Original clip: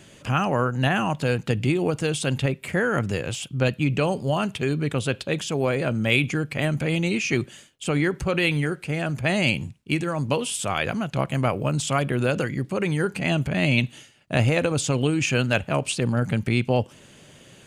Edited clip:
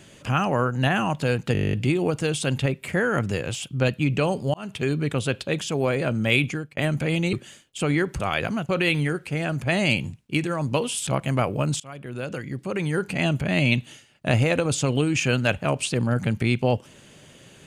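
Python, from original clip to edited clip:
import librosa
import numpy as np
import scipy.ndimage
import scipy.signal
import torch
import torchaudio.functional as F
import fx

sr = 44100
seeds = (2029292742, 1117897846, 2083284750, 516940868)

y = fx.edit(x, sr, fx.stutter(start_s=1.53, slice_s=0.02, count=11),
    fx.fade_in_span(start_s=4.34, length_s=0.28),
    fx.fade_out_span(start_s=6.24, length_s=0.33),
    fx.cut(start_s=7.13, length_s=0.26),
    fx.move(start_s=10.64, length_s=0.49, to_s=8.26),
    fx.fade_in_from(start_s=11.86, length_s=1.31, floor_db=-23.5), tone=tone)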